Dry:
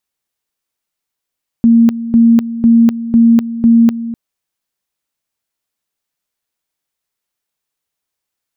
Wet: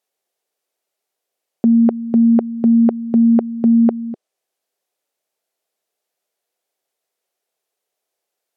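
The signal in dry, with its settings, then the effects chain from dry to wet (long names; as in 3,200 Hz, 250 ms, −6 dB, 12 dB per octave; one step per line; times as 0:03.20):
tone at two levels in turn 231 Hz −4 dBFS, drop 14 dB, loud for 0.25 s, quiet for 0.25 s, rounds 5
treble cut that deepens with the level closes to 1,100 Hz, closed at −5 dBFS
Bessel high-pass filter 260 Hz
flat-topped bell 530 Hz +10 dB 1.3 octaves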